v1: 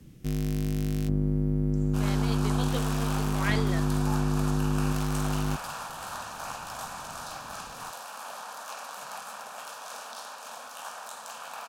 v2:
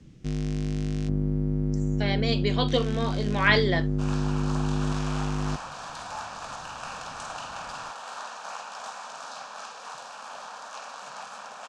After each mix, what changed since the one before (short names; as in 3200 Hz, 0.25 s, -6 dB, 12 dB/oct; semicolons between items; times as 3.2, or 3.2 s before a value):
speech +10.5 dB; second sound: entry +2.05 s; master: add LPF 7200 Hz 24 dB/oct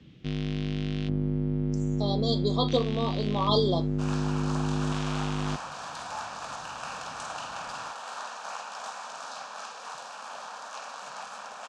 speech: add brick-wall FIR band-stop 1300–3200 Hz; first sound: add synth low-pass 3400 Hz, resonance Q 2.5; master: add HPF 100 Hz 6 dB/oct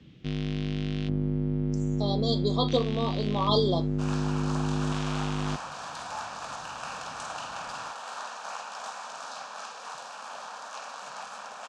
none